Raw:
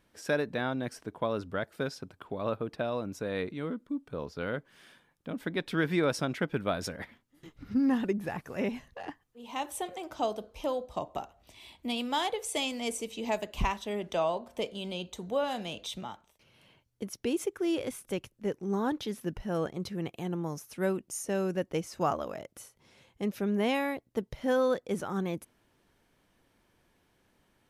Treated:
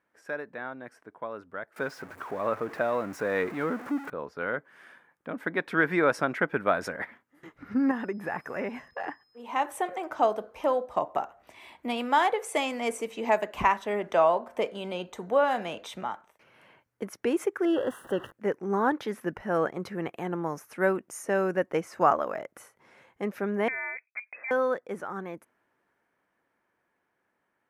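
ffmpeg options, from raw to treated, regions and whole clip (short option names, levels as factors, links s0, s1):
-filter_complex "[0:a]asettb=1/sr,asplit=3[s0][s1][s2];[s0]atrim=end=1.764[s3];[s1]atrim=start=1.76:end=4.1,asetpts=PTS-STARTPTS,afade=t=in:d=0.004:c=qsin,afade=t=out:st=2.336:d=0.004:c=qsin,aeval=exprs='val(0)+0.5*0.00891*sgn(val(0))':c=same,acontrast=52[s4];[s2]atrim=start=4.096[s5];[s3][s4]acrossfade=d=0.004:c1=hsin:c2=qsin[s6];[s6][s5]acrossfade=d=0.004:c1=qsin:c2=hsin,asettb=1/sr,asplit=3[s7][s8][s9];[s7]atrim=end=7.914[s10];[s8]atrim=start=7.91:end=9.42,asetpts=PTS-STARTPTS,afade=t=in:d=0.004:c=qsin,afade=t=out:st=1.506:d=0.004:c=qsin,acompressor=threshold=0.0178:ratio=2:attack=3.2:release=140:knee=1:detection=peak,aeval=exprs='val(0)+0.000794*sin(2*PI*5100*n/s)':c=same[s11];[s9]atrim=start=9.416[s12];[s10][s11]acrossfade=d=0.004:c1=hsin:c2=qsin[s13];[s13][s12]acrossfade=d=0.004:c1=qsin:c2=hsin,asettb=1/sr,asplit=3[s14][s15][s16];[s14]atrim=end=17.654[s17];[s15]atrim=start=17.65:end=18.32,asetpts=PTS-STARTPTS,afade=t=in:d=0.004:c=qsin,afade=t=out:st=0.666:d=0.004:c=qsin,aeval=exprs='val(0)+0.5*0.00708*sgn(val(0))':c=same,asuperstop=centerf=2300:order=12:qfactor=2.9,highshelf=f=3900:t=q:w=1.5:g=-8[s18];[s16]atrim=start=18.316[s19];[s17][s18]acrossfade=d=0.004:c1=hsin:c2=qsin[s20];[s20][s19]acrossfade=d=0.004:c1=qsin:c2=hsin,asettb=1/sr,asplit=3[s21][s22][s23];[s21]atrim=end=23.684[s24];[s22]atrim=start=23.68:end=24.51,asetpts=PTS-STARTPTS,afade=t=in:d=0.004:c=qsin,afade=t=out:st=0.826:d=0.004:c=qsin,agate=range=0.0224:threshold=0.00126:ratio=3:release=100:detection=peak,acompressor=threshold=0.0158:ratio=3:attack=3.2:release=140:knee=1:detection=peak,lowpass=f=2200:t=q:w=0.5098,lowpass=f=2200:t=q:w=0.6013,lowpass=f=2200:t=q:w=0.9,lowpass=f=2200:t=q:w=2.563,afreqshift=-2600[s25];[s23]atrim=start=24.506[s26];[s24][s25]acrossfade=d=0.004:c1=hsin:c2=qsin[s27];[s27][s26]acrossfade=d=0.004:c1=qsin:c2=hsin,highpass=f=530:p=1,highshelf=f=2500:t=q:w=1.5:g=-11,dynaudnorm=f=360:g=21:m=4.47,volume=0.631"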